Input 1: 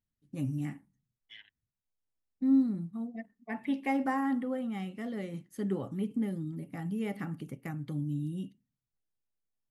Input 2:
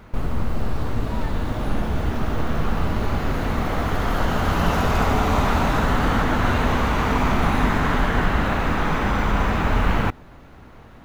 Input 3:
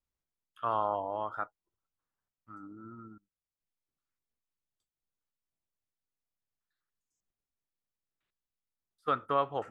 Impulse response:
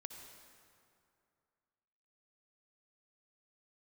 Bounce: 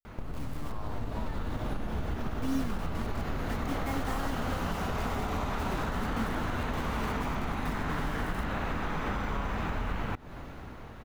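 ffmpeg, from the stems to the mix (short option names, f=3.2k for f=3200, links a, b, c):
-filter_complex "[0:a]acrusher=bits=5:mix=0:aa=0.000001,volume=-11.5dB[a];[1:a]acompressor=threshold=-27dB:ratio=6,adelay=50,volume=-0.5dB[b];[2:a]volume=-13dB[c];[b][c]amix=inputs=2:normalize=0,acompressor=threshold=-36dB:ratio=2,volume=0dB[d];[a][d]amix=inputs=2:normalize=0,dynaudnorm=f=300:g=5:m=3.5dB"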